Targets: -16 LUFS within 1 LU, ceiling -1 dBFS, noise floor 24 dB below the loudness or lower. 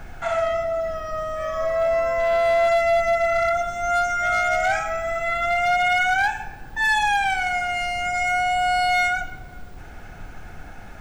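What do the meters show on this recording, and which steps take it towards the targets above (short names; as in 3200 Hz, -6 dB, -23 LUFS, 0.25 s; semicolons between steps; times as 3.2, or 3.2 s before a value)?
clipped 1.6%; flat tops at -15.0 dBFS; noise floor -39 dBFS; noise floor target -46 dBFS; loudness -21.5 LUFS; peak -15.0 dBFS; loudness target -16.0 LUFS
-> clip repair -15 dBFS; noise print and reduce 7 dB; gain +5.5 dB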